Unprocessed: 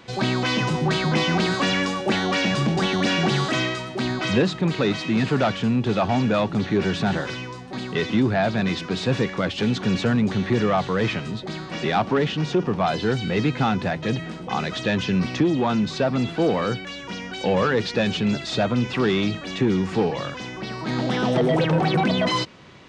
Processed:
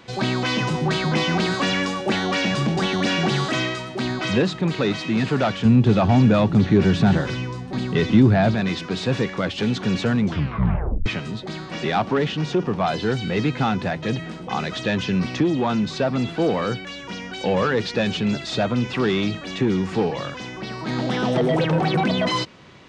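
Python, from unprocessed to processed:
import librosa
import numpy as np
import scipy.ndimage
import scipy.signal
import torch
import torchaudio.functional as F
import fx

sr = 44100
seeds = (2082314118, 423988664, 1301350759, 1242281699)

y = fx.low_shelf(x, sr, hz=250.0, db=11.0, at=(5.65, 8.55))
y = fx.edit(y, sr, fx.tape_stop(start_s=10.21, length_s=0.85), tone=tone)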